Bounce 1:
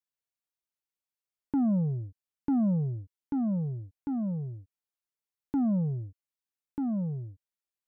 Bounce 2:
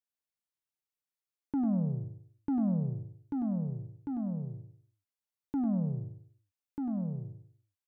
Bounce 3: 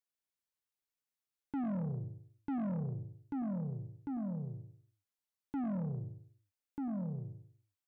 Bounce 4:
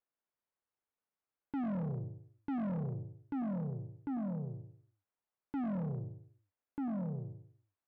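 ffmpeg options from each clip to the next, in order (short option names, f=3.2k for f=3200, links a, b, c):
-af "aecho=1:1:98|196|294|392:0.447|0.152|0.0516|0.0176,volume=-4dB"
-af "asoftclip=type=tanh:threshold=-31.5dB,volume=-1.5dB"
-filter_complex "[0:a]asplit=2[a][b];[b]highpass=f=720:p=1,volume=8dB,asoftclip=type=tanh:threshold=-33dB[c];[a][c]amix=inputs=2:normalize=0,lowpass=f=2.2k:p=1,volume=-6dB,asoftclip=type=hard:threshold=-38.5dB,adynamicsmooth=sensitivity=7.5:basefreq=1.6k,volume=5dB"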